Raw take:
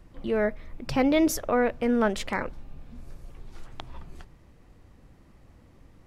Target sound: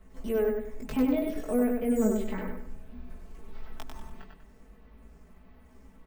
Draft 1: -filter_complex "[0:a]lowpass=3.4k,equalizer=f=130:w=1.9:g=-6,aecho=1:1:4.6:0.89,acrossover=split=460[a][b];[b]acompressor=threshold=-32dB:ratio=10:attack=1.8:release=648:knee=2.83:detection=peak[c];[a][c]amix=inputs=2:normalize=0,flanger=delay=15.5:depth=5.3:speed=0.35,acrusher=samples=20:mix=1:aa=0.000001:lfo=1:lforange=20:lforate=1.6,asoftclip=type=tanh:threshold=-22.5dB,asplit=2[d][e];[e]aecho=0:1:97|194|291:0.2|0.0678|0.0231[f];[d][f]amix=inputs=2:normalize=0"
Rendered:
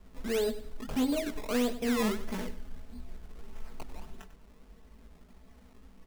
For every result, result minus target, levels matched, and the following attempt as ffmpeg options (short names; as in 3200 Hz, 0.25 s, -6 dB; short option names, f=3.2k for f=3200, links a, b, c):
soft clip: distortion +16 dB; decimation with a swept rate: distortion +15 dB; echo-to-direct -10 dB
-filter_complex "[0:a]lowpass=3.4k,equalizer=f=130:w=1.9:g=-6,aecho=1:1:4.6:0.89,acrossover=split=460[a][b];[b]acompressor=threshold=-32dB:ratio=10:attack=1.8:release=648:knee=2.83:detection=peak[c];[a][c]amix=inputs=2:normalize=0,flanger=delay=15.5:depth=5.3:speed=0.35,acrusher=samples=20:mix=1:aa=0.000001:lfo=1:lforange=20:lforate=1.6,asoftclip=type=tanh:threshold=-12dB,asplit=2[d][e];[e]aecho=0:1:97|194|291:0.2|0.0678|0.0231[f];[d][f]amix=inputs=2:normalize=0"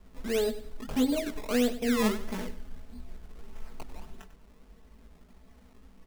decimation with a swept rate: distortion +15 dB; echo-to-direct -10 dB
-filter_complex "[0:a]lowpass=3.4k,equalizer=f=130:w=1.9:g=-6,aecho=1:1:4.6:0.89,acrossover=split=460[a][b];[b]acompressor=threshold=-32dB:ratio=10:attack=1.8:release=648:knee=2.83:detection=peak[c];[a][c]amix=inputs=2:normalize=0,flanger=delay=15.5:depth=5.3:speed=0.35,acrusher=samples=4:mix=1:aa=0.000001:lfo=1:lforange=4:lforate=1.6,asoftclip=type=tanh:threshold=-12dB,asplit=2[d][e];[e]aecho=0:1:97|194|291:0.2|0.0678|0.0231[f];[d][f]amix=inputs=2:normalize=0"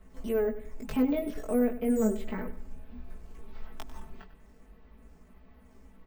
echo-to-direct -10 dB
-filter_complex "[0:a]lowpass=3.4k,equalizer=f=130:w=1.9:g=-6,aecho=1:1:4.6:0.89,acrossover=split=460[a][b];[b]acompressor=threshold=-32dB:ratio=10:attack=1.8:release=648:knee=2.83:detection=peak[c];[a][c]amix=inputs=2:normalize=0,flanger=delay=15.5:depth=5.3:speed=0.35,acrusher=samples=4:mix=1:aa=0.000001:lfo=1:lforange=4:lforate=1.6,asoftclip=type=tanh:threshold=-12dB,asplit=2[d][e];[e]aecho=0:1:97|194|291|388:0.631|0.215|0.0729|0.0248[f];[d][f]amix=inputs=2:normalize=0"